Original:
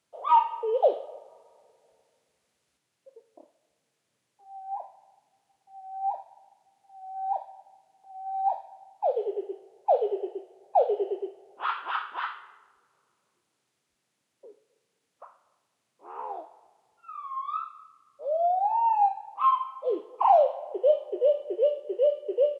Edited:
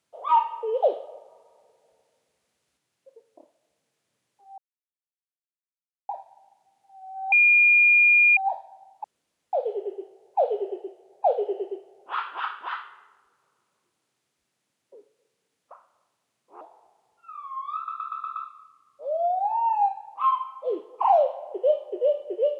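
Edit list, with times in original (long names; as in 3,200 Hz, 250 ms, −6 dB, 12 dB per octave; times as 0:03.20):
0:04.58–0:06.09: silence
0:07.32–0:08.37: beep over 2,420 Hz −13.5 dBFS
0:09.04: splice in room tone 0.49 s
0:16.12–0:16.41: remove
0:17.56: stutter 0.12 s, 6 plays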